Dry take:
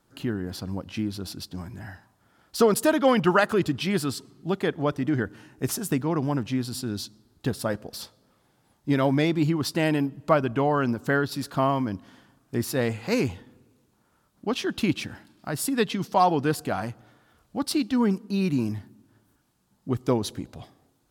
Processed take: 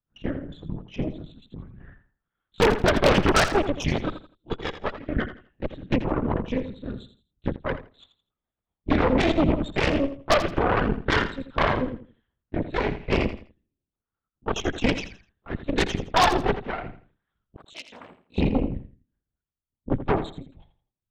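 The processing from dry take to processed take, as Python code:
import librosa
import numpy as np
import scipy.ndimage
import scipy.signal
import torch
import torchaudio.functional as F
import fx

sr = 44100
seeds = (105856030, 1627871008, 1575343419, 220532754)

p1 = fx.bin_expand(x, sr, power=1.5)
p2 = fx.highpass(p1, sr, hz=460.0, slope=12, at=(4.15, 5.15))
p3 = fx.lpc_vocoder(p2, sr, seeds[0], excitation='whisper', order=8)
p4 = 10.0 ** (-26.0 / 20.0) * np.tanh(p3 / 10.0 ** (-26.0 / 20.0))
p5 = p3 + (p4 * librosa.db_to_amplitude(-11.5))
p6 = fx.cheby_harmonics(p5, sr, harmonics=(6,), levels_db=(-8,), full_scale_db=-11.5)
p7 = fx.differentiator(p6, sr, at=(17.56, 18.38))
p8 = p7 + fx.echo_feedback(p7, sr, ms=83, feedback_pct=27, wet_db=-11.5, dry=0)
y = fx.band_widen(p8, sr, depth_pct=100, at=(7.56, 7.97))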